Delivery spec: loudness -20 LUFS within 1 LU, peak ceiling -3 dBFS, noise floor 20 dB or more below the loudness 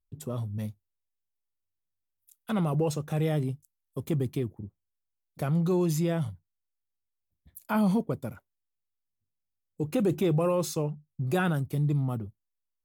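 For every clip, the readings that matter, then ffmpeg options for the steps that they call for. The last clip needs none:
loudness -29.5 LUFS; peak -15.5 dBFS; loudness target -20.0 LUFS
-> -af "volume=9.5dB"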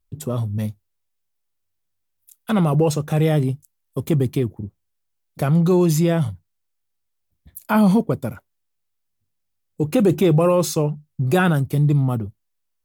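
loudness -20.0 LUFS; peak -6.0 dBFS; noise floor -74 dBFS

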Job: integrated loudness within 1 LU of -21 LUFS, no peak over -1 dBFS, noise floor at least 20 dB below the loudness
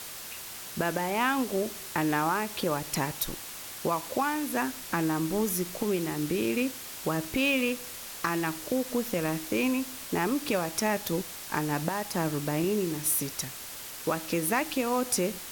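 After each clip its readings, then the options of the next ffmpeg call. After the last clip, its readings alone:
noise floor -41 dBFS; noise floor target -50 dBFS; loudness -29.5 LUFS; peak -12.5 dBFS; loudness target -21.0 LUFS
-> -af "afftdn=nr=9:nf=-41"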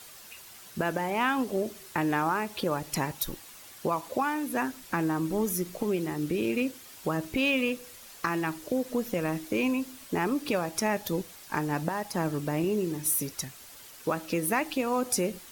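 noise floor -49 dBFS; noise floor target -50 dBFS
-> -af "afftdn=nr=6:nf=-49"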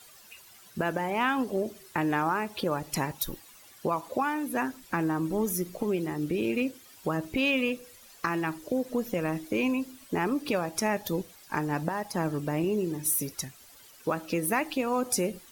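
noise floor -54 dBFS; loudness -30.0 LUFS; peak -13.0 dBFS; loudness target -21.0 LUFS
-> -af "volume=9dB"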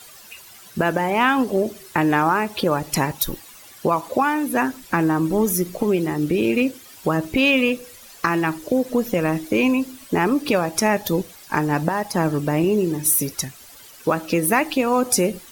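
loudness -21.0 LUFS; peak -4.0 dBFS; noise floor -45 dBFS

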